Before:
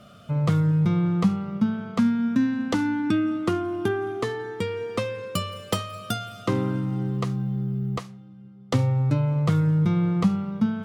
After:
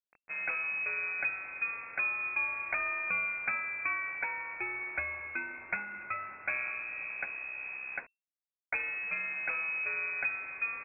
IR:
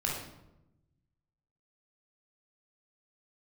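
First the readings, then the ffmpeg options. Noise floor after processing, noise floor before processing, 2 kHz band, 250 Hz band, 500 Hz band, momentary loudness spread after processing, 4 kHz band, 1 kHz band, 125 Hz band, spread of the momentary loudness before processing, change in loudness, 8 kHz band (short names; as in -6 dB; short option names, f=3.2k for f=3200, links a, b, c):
under -85 dBFS, -47 dBFS, +7.5 dB, -35.0 dB, -20.0 dB, 7 LU, under -40 dB, -7.5 dB, under -35 dB, 9 LU, -8.5 dB, under -35 dB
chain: -af "aemphasis=mode=production:type=riaa,aresample=8000,acrusher=bits=6:mix=0:aa=0.000001,aresample=44100,lowpass=f=2.3k:t=q:w=0.5098,lowpass=f=2.3k:t=q:w=0.6013,lowpass=f=2.3k:t=q:w=0.9,lowpass=f=2.3k:t=q:w=2.563,afreqshift=-2700,volume=-5dB"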